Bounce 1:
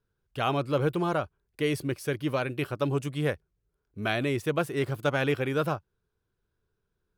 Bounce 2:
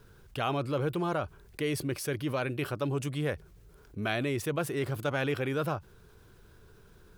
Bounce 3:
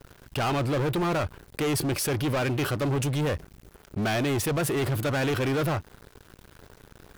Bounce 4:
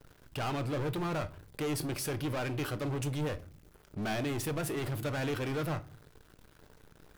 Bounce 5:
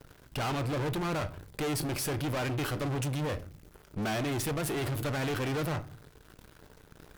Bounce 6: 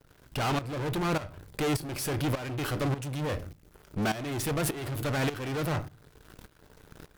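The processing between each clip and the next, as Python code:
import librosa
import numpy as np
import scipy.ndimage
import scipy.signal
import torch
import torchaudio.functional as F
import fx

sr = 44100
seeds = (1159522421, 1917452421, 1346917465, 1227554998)

y1 = fx.env_flatten(x, sr, amount_pct=50)
y1 = y1 * librosa.db_to_amplitude(-5.5)
y2 = fx.leveller(y1, sr, passes=5)
y2 = y2 * librosa.db_to_amplitude(-6.5)
y3 = fx.room_shoebox(y2, sr, seeds[0], volume_m3=220.0, walls='furnished', distance_m=0.49)
y3 = y3 * librosa.db_to_amplitude(-8.5)
y4 = fx.tube_stage(y3, sr, drive_db=37.0, bias=0.65)
y4 = y4 * librosa.db_to_amplitude(8.0)
y5 = fx.tremolo_shape(y4, sr, shape='saw_up', hz=1.7, depth_pct=80)
y5 = y5 * librosa.db_to_amplitude(5.0)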